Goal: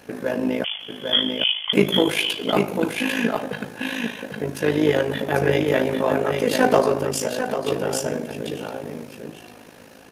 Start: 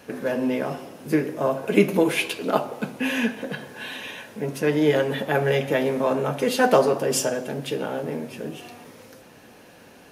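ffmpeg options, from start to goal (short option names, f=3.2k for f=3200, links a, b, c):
-filter_complex "[0:a]asplit=2[a][b];[b]asoftclip=type=hard:threshold=-13dB,volume=-5dB[c];[a][c]amix=inputs=2:normalize=0,asettb=1/sr,asplit=3[d][e][f];[d]atrim=end=0.644[g];[e]atrim=start=0.64:end=1.73,asetpts=PTS-STARTPTS,afade=t=in:d=0.004:c=qsin,afade=t=out:st=1.086:d=0.004:c=qsin,lowpass=f=3.1k:t=q:w=0.5098,lowpass=f=3.1k:t=q:w=0.6013,lowpass=f=3.1k:t=q:w=0.9,lowpass=f=3.1k:t=q:w=2.563,afreqshift=-3600[h];[f]atrim=start=1.726[i];[g][h]acrossfade=d=0.004:c1=hsin:c2=qsin[j];[j][i]acrossfade=d=0.004:c1=qsin:c2=hsin,aecho=1:1:797:0.596,asettb=1/sr,asplit=3[k][l][m];[k]atrim=end=7.044[n];[l]atrim=start=7.04:end=7.67,asetpts=PTS-STARTPTS,afade=t=in:d=0.004:c=qsin,afade=t=out:st=0.626:d=0.004:c=qsin,acompressor=threshold=-18dB:ratio=6[o];[m]atrim=start=7.666[p];[n][o]acrossfade=d=0.004:c1=hsin:c2=qsin[q];[q][p]acrossfade=d=0.004:c1=qsin:c2=hsin,tremolo=f=53:d=0.71"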